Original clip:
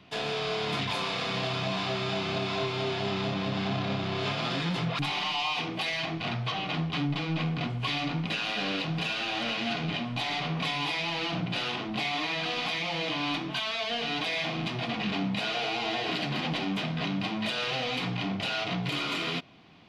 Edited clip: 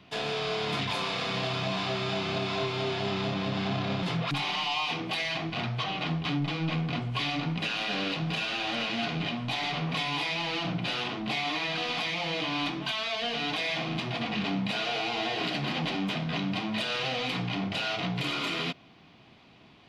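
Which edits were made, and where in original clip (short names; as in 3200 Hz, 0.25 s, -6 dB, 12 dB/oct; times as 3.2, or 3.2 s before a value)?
4.03–4.71 cut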